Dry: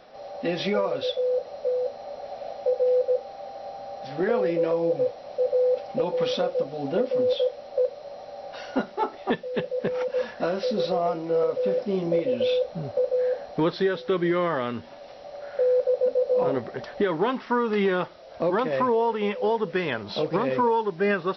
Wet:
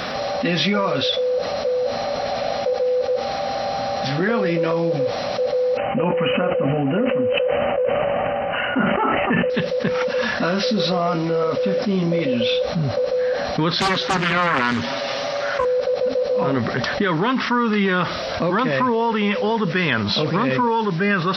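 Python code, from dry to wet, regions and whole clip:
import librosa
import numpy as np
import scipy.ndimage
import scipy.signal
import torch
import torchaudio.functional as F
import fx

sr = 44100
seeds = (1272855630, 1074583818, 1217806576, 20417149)

y = fx.chain(x, sr, fx.brickwall_lowpass(high_hz=3100.0),
    fx.sustainer(db_per_s=25.0), at=(5.77, 9.5))
y = fx.chain(y, sr, fx.low_shelf(hz=210.0, db=-10.0),
    fx.comb(ms=7.4, depth=0.87),
    fx.doppler_dist(depth_ms=0.85), at=(13.78, 15.65))
y = scipy.signal.sosfilt(scipy.signal.butter(2, 53.0, 'highpass', fs=sr, output='sos'), y)
y = fx.band_shelf(y, sr, hz=530.0, db=-8.5, octaves=1.7)
y = fx.env_flatten(y, sr, amount_pct=70)
y = F.gain(torch.from_numpy(y), 5.5).numpy()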